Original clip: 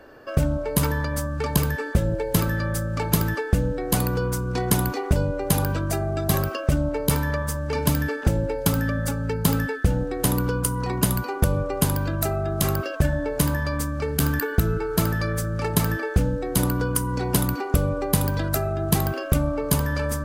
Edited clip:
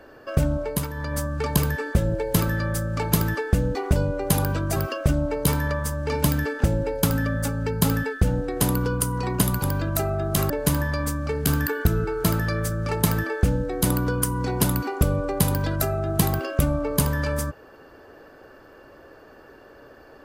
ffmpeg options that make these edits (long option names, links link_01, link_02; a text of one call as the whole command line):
ffmpeg -i in.wav -filter_complex "[0:a]asplit=7[link_01][link_02][link_03][link_04][link_05][link_06][link_07];[link_01]atrim=end=0.87,asetpts=PTS-STARTPTS,afade=type=out:start_time=0.63:duration=0.24:silence=0.354813[link_08];[link_02]atrim=start=0.87:end=0.93,asetpts=PTS-STARTPTS,volume=-9dB[link_09];[link_03]atrim=start=0.93:end=3.752,asetpts=PTS-STARTPTS,afade=type=in:duration=0.24:silence=0.354813[link_10];[link_04]atrim=start=4.948:end=5.962[link_11];[link_05]atrim=start=6.388:end=11.252[link_12];[link_06]atrim=start=11.878:end=12.762[link_13];[link_07]atrim=start=13.228[link_14];[link_08][link_09][link_10]concat=n=3:v=0:a=1[link_15];[link_15][link_11]acrossfade=duration=0.004:curve1=hsin:curve2=hsin[link_16];[link_16][link_12]acrossfade=duration=0.004:curve1=hsin:curve2=hsin[link_17];[link_17][link_13]acrossfade=duration=0.004:curve1=hsin:curve2=hsin[link_18];[link_18][link_14]acrossfade=duration=0.004:curve1=hsin:curve2=hsin" out.wav